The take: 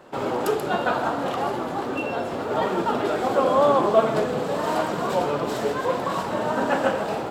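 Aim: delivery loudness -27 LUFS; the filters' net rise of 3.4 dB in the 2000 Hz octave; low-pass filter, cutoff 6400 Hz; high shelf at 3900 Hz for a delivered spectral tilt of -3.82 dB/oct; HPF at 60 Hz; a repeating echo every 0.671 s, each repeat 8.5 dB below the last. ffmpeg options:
-af "highpass=60,lowpass=6.4k,equalizer=f=2k:t=o:g=6.5,highshelf=f=3.9k:g=-7,aecho=1:1:671|1342|2013|2684:0.376|0.143|0.0543|0.0206,volume=-4.5dB"

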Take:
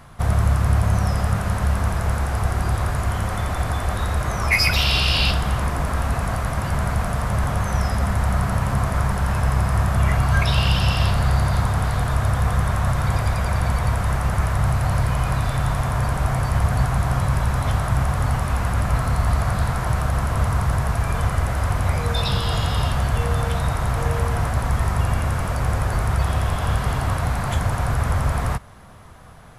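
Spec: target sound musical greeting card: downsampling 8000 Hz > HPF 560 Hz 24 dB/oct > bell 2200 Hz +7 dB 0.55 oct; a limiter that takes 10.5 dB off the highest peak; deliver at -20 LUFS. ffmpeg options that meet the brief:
-af "alimiter=limit=-16.5dB:level=0:latency=1,aresample=8000,aresample=44100,highpass=f=560:w=0.5412,highpass=f=560:w=1.3066,equalizer=f=2.2k:t=o:w=0.55:g=7,volume=10.5dB"

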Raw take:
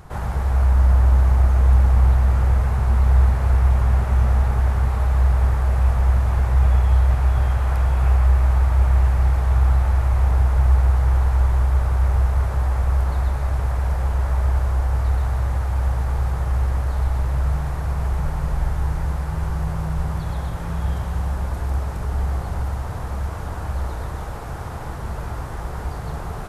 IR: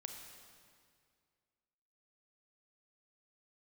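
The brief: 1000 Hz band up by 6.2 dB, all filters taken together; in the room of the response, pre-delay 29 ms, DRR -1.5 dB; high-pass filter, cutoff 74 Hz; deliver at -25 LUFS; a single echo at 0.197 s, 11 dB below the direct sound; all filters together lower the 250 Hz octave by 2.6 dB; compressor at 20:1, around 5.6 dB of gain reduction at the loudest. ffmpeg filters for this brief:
-filter_complex "[0:a]highpass=74,equalizer=f=250:t=o:g=-5,equalizer=f=1k:t=o:g=8,acompressor=threshold=-20dB:ratio=20,aecho=1:1:197:0.282,asplit=2[a][b];[1:a]atrim=start_sample=2205,adelay=29[c];[b][c]afir=irnorm=-1:irlink=0,volume=5dB[d];[a][d]amix=inputs=2:normalize=0,volume=-1.5dB"

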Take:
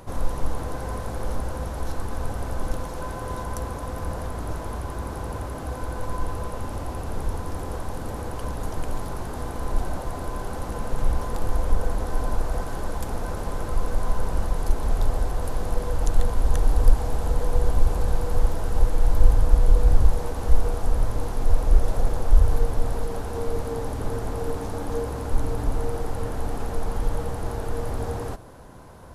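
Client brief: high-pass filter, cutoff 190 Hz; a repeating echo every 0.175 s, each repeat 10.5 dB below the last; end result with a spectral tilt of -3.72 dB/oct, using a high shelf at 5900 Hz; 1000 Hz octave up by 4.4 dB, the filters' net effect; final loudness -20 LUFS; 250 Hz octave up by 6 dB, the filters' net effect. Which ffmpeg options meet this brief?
-af "highpass=190,equalizer=f=250:t=o:g=9,equalizer=f=1k:t=o:g=5,highshelf=f=5.9k:g=-7,aecho=1:1:175|350|525:0.299|0.0896|0.0269,volume=10dB"

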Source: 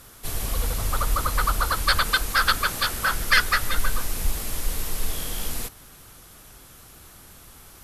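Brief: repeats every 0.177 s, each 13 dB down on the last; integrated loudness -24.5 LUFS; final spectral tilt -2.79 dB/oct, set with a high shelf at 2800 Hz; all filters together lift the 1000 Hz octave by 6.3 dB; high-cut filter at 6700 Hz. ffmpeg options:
-af "lowpass=6.7k,equalizer=f=1k:t=o:g=7,highshelf=f=2.8k:g=7.5,aecho=1:1:177|354|531:0.224|0.0493|0.0108,volume=-4.5dB"

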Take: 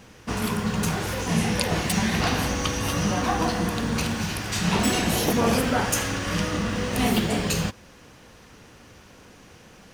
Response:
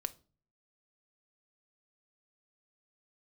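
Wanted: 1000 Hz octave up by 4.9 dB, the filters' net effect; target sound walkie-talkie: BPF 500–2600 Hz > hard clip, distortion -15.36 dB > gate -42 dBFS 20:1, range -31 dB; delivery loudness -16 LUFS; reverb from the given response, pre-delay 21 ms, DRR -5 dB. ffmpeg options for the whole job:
-filter_complex "[0:a]equalizer=f=1k:t=o:g=7,asplit=2[a][b];[1:a]atrim=start_sample=2205,adelay=21[c];[b][c]afir=irnorm=-1:irlink=0,volume=5.5dB[d];[a][d]amix=inputs=2:normalize=0,highpass=500,lowpass=2.6k,asoftclip=type=hard:threshold=-13.5dB,agate=range=-31dB:threshold=-42dB:ratio=20,volume=5.5dB"

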